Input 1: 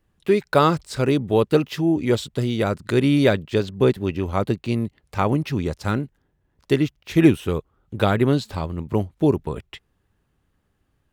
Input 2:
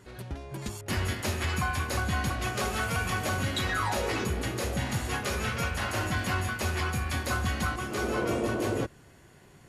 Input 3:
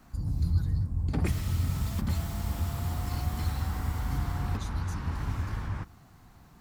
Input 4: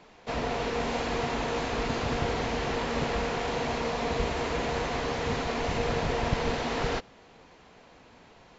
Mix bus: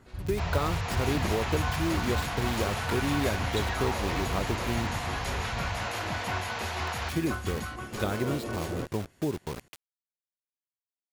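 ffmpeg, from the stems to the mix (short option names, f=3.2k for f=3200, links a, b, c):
-filter_complex "[0:a]acrusher=bits=4:mix=0:aa=0.000001,acompressor=threshold=-17dB:ratio=6,volume=-8.5dB,asplit=3[a][b][c];[a]atrim=end=4.96,asetpts=PTS-STARTPTS,afade=t=out:st=4.956:d=0.004:c=hsin[d];[b]atrim=start=4.96:end=6.87,asetpts=PTS-STARTPTS,volume=0[e];[c]atrim=start=6.87,asetpts=PTS-STARTPTS,afade=t=in:d=0.004:c=hsin[f];[d][e][f]concat=n=3:v=0:a=1[g];[1:a]acrossover=split=2100[h][i];[h]aeval=exprs='val(0)*(1-0.5/2+0.5/2*cos(2*PI*4.1*n/s))':c=same[j];[i]aeval=exprs='val(0)*(1-0.5/2-0.5/2*cos(2*PI*4.1*n/s))':c=same[k];[j][k]amix=inputs=2:normalize=0,volume=-3.5dB[l];[2:a]lowpass=f=3.1k:p=1,volume=-4.5dB[m];[3:a]highpass=f=680:w=0.5412,highpass=f=680:w=1.3066,adelay=100,volume=-1.5dB[n];[g][l][m][n]amix=inputs=4:normalize=0"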